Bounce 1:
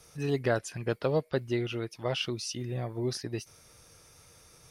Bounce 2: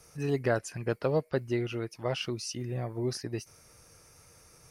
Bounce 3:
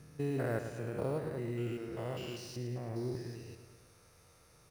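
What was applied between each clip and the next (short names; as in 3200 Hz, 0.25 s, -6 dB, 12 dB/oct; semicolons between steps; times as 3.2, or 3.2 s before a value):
bell 3500 Hz -9 dB 0.41 oct
stepped spectrum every 0.2 s; in parallel at -4.5 dB: sample-rate reducer 10000 Hz, jitter 0%; on the sum: feedback echo 0.109 s, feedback 59%, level -9.5 dB; gain -7.5 dB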